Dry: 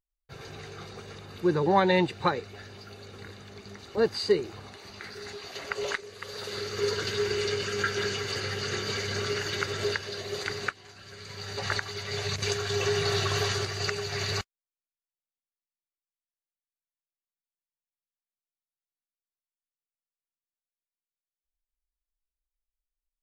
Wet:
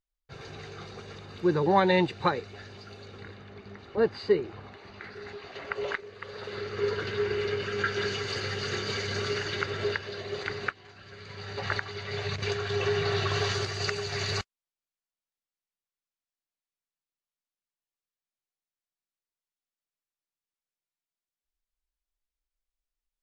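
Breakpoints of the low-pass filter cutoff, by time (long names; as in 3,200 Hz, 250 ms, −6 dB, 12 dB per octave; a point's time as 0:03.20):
0:02.95 6,000 Hz
0:03.47 2,700 Hz
0:07.55 2,700 Hz
0:08.24 5,800 Hz
0:09.31 5,800 Hz
0:09.72 3,500 Hz
0:13.15 3,500 Hz
0:13.71 7,300 Hz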